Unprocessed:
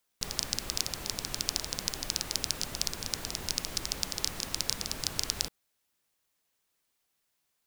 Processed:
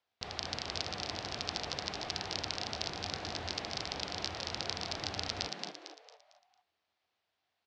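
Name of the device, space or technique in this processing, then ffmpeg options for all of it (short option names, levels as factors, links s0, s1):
frequency-shifting delay pedal into a guitar cabinet: -filter_complex "[0:a]asplit=6[s0][s1][s2][s3][s4][s5];[s1]adelay=226,afreqshift=140,volume=0.708[s6];[s2]adelay=452,afreqshift=280,volume=0.282[s7];[s3]adelay=678,afreqshift=420,volume=0.114[s8];[s4]adelay=904,afreqshift=560,volume=0.0452[s9];[s5]adelay=1130,afreqshift=700,volume=0.0182[s10];[s0][s6][s7][s8][s9][s10]amix=inputs=6:normalize=0,highpass=78,equalizer=f=88:t=q:w=4:g=9,equalizer=f=160:t=q:w=4:g=-9,equalizer=f=260:t=q:w=4:g=-4,equalizer=f=730:t=q:w=4:g=8,lowpass=f=4500:w=0.5412,lowpass=f=4500:w=1.3066,volume=0.794"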